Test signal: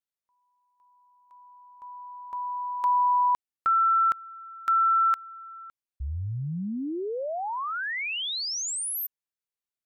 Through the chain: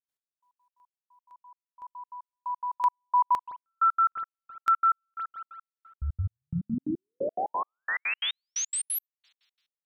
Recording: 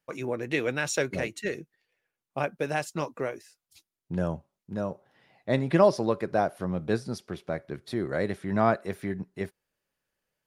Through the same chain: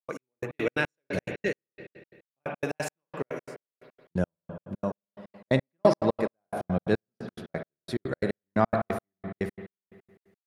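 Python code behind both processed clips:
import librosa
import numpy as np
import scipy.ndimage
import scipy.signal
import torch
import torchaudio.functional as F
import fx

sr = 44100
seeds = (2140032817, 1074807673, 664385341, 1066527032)

y = fx.rev_spring(x, sr, rt60_s=1.8, pass_ms=(54,), chirp_ms=30, drr_db=6.0)
y = fx.step_gate(y, sr, bpm=177, pattern='.x...x.x', floor_db=-60.0, edge_ms=4.5)
y = y * 10.0 ** (2.0 / 20.0)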